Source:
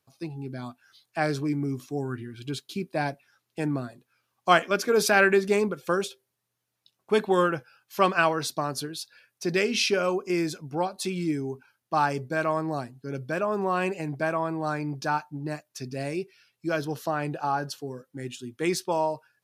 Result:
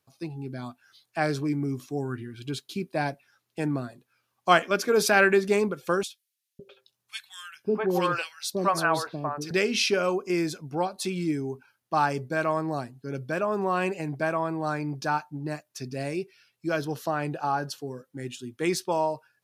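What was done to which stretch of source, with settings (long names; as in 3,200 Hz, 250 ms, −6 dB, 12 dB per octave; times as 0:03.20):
0:06.03–0:09.51: three-band delay without the direct sound highs, lows, mids 560/660 ms, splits 510/2,100 Hz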